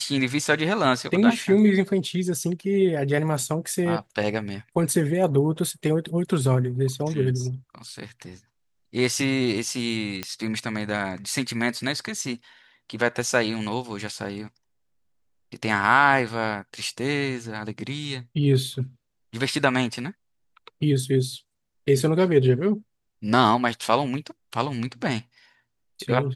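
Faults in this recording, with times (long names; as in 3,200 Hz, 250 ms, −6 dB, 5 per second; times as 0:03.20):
0:10.23: click −12 dBFS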